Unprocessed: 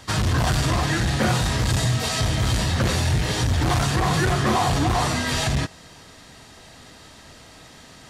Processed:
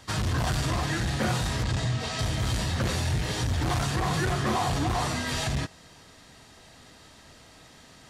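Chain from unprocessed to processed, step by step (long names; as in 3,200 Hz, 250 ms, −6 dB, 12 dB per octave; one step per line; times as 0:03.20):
0:01.63–0:02.19: high-frequency loss of the air 68 metres
level −6 dB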